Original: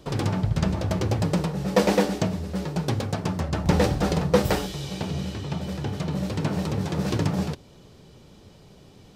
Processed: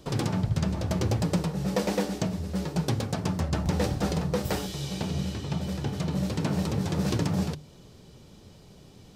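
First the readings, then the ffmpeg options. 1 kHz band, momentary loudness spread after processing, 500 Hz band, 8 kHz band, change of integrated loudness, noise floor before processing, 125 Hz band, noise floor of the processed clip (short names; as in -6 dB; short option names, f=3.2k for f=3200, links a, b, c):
-5.0 dB, 5 LU, -6.0 dB, -1.0 dB, -3.0 dB, -51 dBFS, -2.5 dB, -52 dBFS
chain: -af "bass=f=250:g=3,treble=f=4k:g=4,bandreject=f=50:t=h:w=6,bandreject=f=100:t=h:w=6,bandreject=f=150:t=h:w=6,alimiter=limit=-12.5dB:level=0:latency=1:release=441,volume=-2.5dB"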